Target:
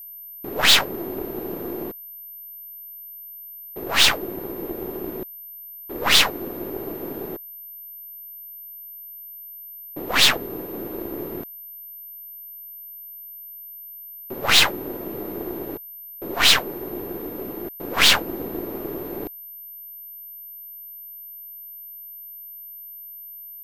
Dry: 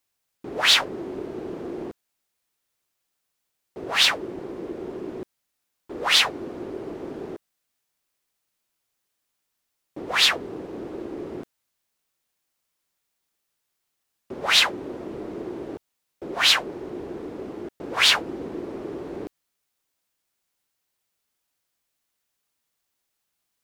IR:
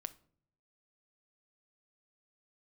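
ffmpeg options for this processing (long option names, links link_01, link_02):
-af "aeval=exprs='val(0)+0.0112*sin(2*PI*13000*n/s)':channel_layout=same,aeval=exprs='0.596*(cos(1*acos(clip(val(0)/0.596,-1,1)))-cos(1*PI/2))+0.075*(cos(8*acos(clip(val(0)/0.596,-1,1)))-cos(8*PI/2))':channel_layout=same,volume=2dB"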